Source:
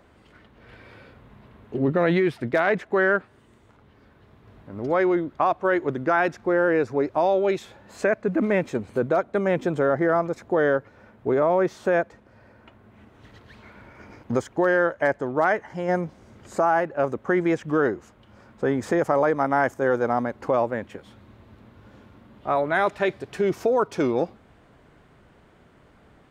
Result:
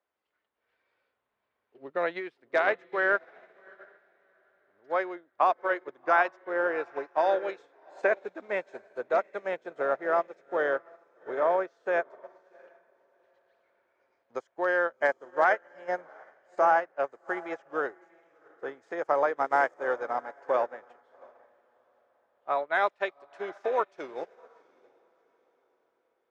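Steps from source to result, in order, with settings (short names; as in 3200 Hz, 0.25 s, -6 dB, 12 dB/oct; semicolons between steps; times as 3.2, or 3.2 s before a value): three-band isolator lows -22 dB, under 410 Hz, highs -19 dB, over 7300 Hz; on a send: diffused feedback echo 0.729 s, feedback 44%, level -9.5 dB; on the sum: upward expander 2.5:1, over -37 dBFS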